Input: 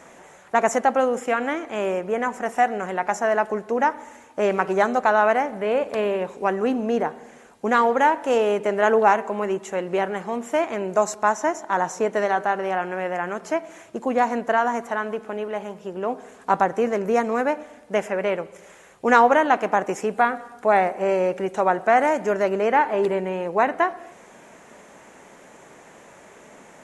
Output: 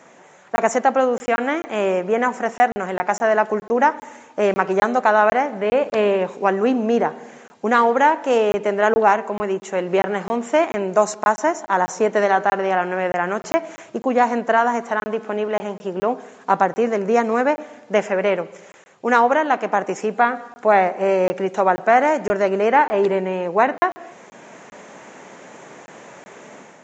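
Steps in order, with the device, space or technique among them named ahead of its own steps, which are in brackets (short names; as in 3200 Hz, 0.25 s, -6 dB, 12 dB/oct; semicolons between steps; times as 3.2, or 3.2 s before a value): call with lost packets (HPF 110 Hz 24 dB/oct; downsampling 16000 Hz; AGC gain up to 7.5 dB; packet loss packets of 20 ms random); gain -1 dB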